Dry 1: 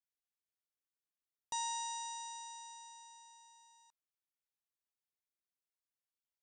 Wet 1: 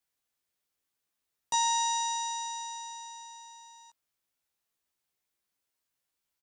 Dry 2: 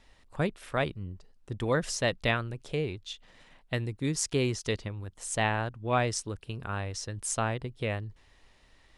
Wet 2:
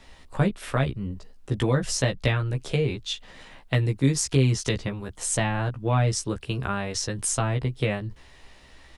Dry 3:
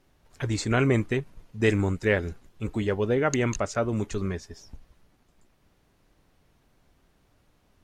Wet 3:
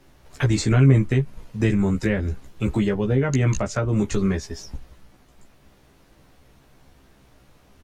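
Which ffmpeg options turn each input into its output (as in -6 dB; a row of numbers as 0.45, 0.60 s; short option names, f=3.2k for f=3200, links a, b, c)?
-filter_complex "[0:a]acrossover=split=210[a][b];[b]acompressor=threshold=-34dB:ratio=6[c];[a][c]amix=inputs=2:normalize=0,asplit=2[d][e];[e]adelay=15,volume=-3dB[f];[d][f]amix=inputs=2:normalize=0,volume=8.5dB"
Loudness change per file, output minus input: +11.5, +5.5, +5.0 LU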